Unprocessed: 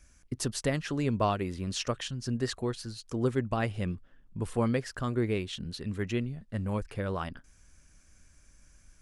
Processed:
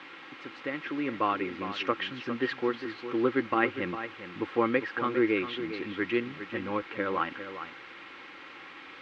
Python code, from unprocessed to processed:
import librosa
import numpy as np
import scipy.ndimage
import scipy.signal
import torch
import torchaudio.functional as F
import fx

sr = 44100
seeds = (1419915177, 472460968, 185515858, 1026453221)

p1 = fx.fade_in_head(x, sr, length_s=1.85)
p2 = fx.low_shelf(p1, sr, hz=230.0, db=-10.5)
p3 = p2 + 10.0 ** (-10.5 / 20.0) * np.pad(p2, (int(405 * sr / 1000.0), 0))[:len(p2)]
p4 = fx.quant_dither(p3, sr, seeds[0], bits=6, dither='triangular')
p5 = p3 + F.gain(torch.from_numpy(p4), -6.5).numpy()
p6 = fx.cabinet(p5, sr, low_hz=180.0, low_slope=12, high_hz=2900.0, hz=(220.0, 330.0, 640.0, 1300.0, 2100.0), db=(-7, 8, -10, 4, 4))
p7 = p6 + 0.35 * np.pad(p6, (int(3.7 * sr / 1000.0), 0))[:len(p6)]
y = F.gain(torch.from_numpy(p7), 2.5).numpy()